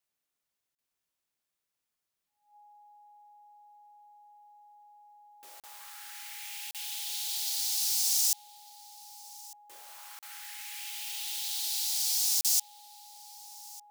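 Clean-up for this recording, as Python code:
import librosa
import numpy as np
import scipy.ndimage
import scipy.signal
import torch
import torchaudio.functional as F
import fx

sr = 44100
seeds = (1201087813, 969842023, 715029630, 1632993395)

y = fx.fix_declip(x, sr, threshold_db=-16.0)
y = fx.notch(y, sr, hz=830.0, q=30.0)
y = fx.fix_interpolate(y, sr, at_s=(0.75, 5.6, 6.71, 10.19, 12.41), length_ms=37.0)
y = fx.fix_echo_inverse(y, sr, delay_ms=1200, level_db=-21.5)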